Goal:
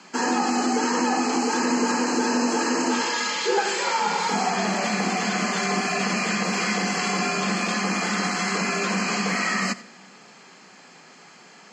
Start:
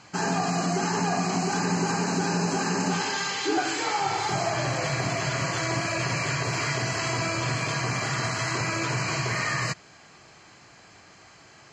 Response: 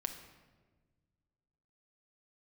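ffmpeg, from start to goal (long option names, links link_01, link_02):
-filter_complex "[0:a]highpass=69,afreqshift=69,asplit=2[link_01][link_02];[1:a]atrim=start_sample=2205,adelay=87[link_03];[link_02][link_03]afir=irnorm=-1:irlink=0,volume=-17dB[link_04];[link_01][link_04]amix=inputs=2:normalize=0,volume=3dB"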